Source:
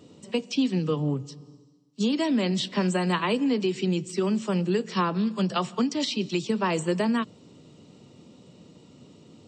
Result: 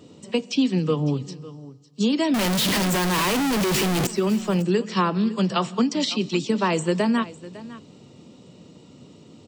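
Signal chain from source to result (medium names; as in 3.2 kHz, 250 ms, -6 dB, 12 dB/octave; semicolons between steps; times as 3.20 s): 2.34–4.07 s: one-bit comparator; delay 554 ms -17.5 dB; trim +3.5 dB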